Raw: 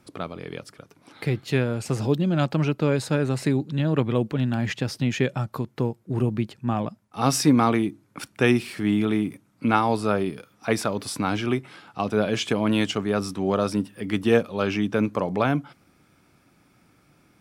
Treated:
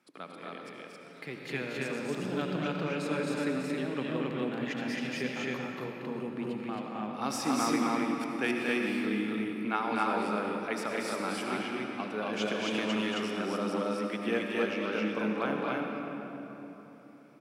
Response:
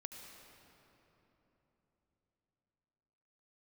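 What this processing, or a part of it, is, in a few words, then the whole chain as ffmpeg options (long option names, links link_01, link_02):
stadium PA: -filter_complex "[0:a]highpass=frequency=180:width=0.5412,highpass=frequency=180:width=1.3066,equalizer=frequency=2000:width_type=o:width=1.9:gain=6.5,aecho=1:1:230.3|268.2:0.562|0.891[link_01];[1:a]atrim=start_sample=2205[link_02];[link_01][link_02]afir=irnorm=-1:irlink=0,volume=-8.5dB"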